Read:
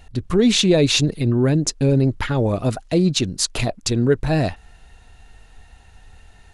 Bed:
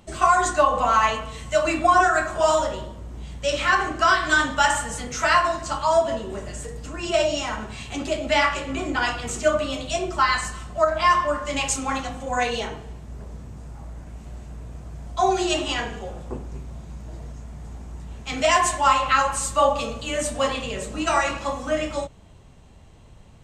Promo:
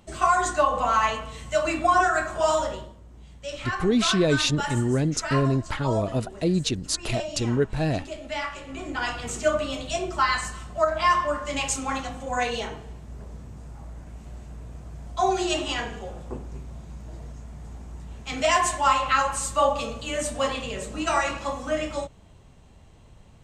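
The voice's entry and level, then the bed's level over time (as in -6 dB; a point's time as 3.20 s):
3.50 s, -6.0 dB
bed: 2.74 s -3 dB
3.00 s -11 dB
8.53 s -11 dB
9.23 s -2.5 dB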